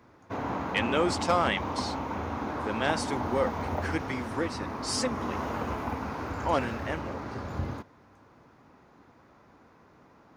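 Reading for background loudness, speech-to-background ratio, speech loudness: -34.0 LUFS, 2.5 dB, -31.5 LUFS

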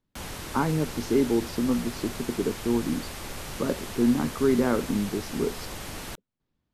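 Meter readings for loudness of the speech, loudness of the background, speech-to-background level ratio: -27.5 LUFS, -37.0 LUFS, 9.5 dB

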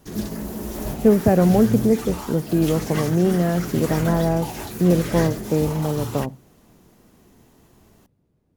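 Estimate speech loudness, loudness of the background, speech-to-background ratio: -20.5 LUFS, -30.0 LUFS, 9.5 dB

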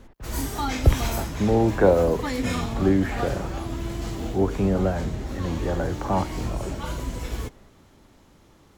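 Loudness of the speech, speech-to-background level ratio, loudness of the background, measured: -25.0 LUFS, 6.0 dB, -31.0 LUFS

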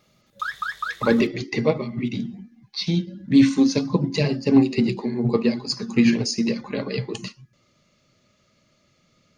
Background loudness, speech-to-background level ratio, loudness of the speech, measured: -30.0 LUFS, 8.0 dB, -22.0 LUFS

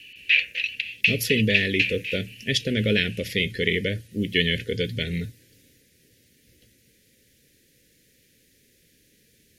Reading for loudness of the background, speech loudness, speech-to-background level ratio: -23.0 LUFS, -25.0 LUFS, -2.0 dB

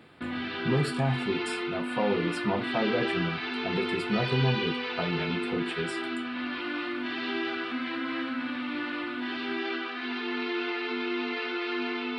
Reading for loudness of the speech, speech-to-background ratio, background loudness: -31.5 LUFS, 0.5 dB, -32.0 LUFS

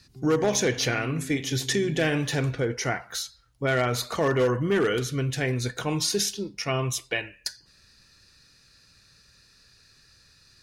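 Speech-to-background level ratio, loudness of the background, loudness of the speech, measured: 15.0 dB, -41.5 LUFS, -26.5 LUFS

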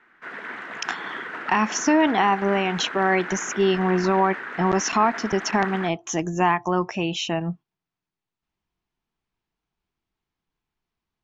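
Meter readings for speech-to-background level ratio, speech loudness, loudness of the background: 10.0 dB, -23.0 LUFS, -33.0 LUFS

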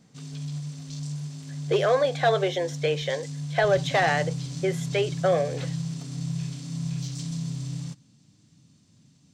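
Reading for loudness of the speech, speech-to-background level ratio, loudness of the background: -25.5 LUFS, 8.0 dB, -33.5 LUFS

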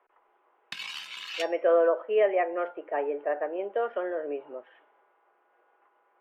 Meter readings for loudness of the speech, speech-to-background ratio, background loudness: -28.0 LUFS, 9.5 dB, -37.5 LUFS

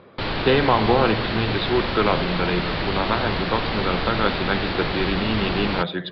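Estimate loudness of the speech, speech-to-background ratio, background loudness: -23.5 LUFS, 2.0 dB, -25.5 LUFS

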